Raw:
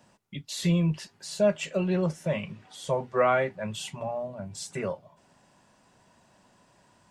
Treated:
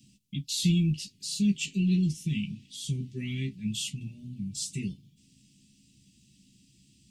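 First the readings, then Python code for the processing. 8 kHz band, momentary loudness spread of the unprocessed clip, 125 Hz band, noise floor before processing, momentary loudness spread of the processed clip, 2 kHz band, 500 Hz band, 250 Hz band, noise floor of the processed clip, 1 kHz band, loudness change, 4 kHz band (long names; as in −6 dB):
+4.0 dB, 14 LU, +2.0 dB, −63 dBFS, 13 LU, −7.0 dB, −21.0 dB, +2.5 dB, −64 dBFS, below −40 dB, −1.5 dB, +4.0 dB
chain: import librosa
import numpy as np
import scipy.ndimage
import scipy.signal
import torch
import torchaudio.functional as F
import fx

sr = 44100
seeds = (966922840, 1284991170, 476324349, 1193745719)

y = scipy.signal.sosfilt(scipy.signal.cheby2(4, 50, [530.0, 1500.0], 'bandstop', fs=sr, output='sos'), x)
y = fx.doubler(y, sr, ms=15.0, db=-7)
y = F.gain(torch.from_numpy(y), 3.5).numpy()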